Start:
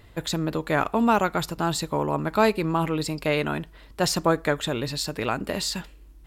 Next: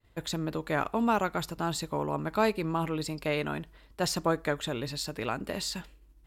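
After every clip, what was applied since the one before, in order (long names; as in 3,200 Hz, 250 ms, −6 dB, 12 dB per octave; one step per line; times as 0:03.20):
downward expander −44 dBFS
level −6 dB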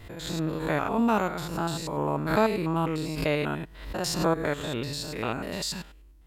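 spectrum averaged block by block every 100 ms
background raised ahead of every attack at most 76 dB per second
level +4.5 dB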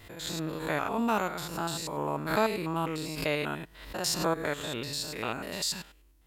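spectral tilt +1.5 dB per octave
level −2.5 dB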